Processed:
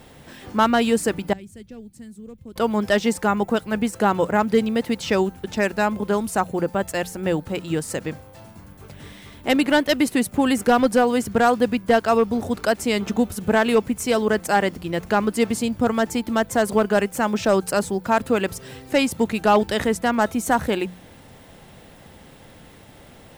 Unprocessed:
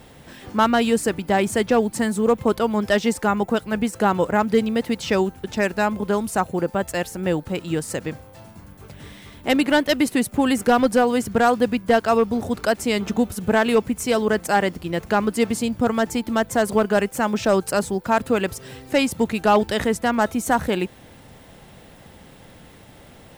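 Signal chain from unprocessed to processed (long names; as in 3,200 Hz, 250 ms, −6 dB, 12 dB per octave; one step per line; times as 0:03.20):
0:01.33–0:02.56: guitar amp tone stack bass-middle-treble 10-0-1
mains-hum notches 60/120/180 Hz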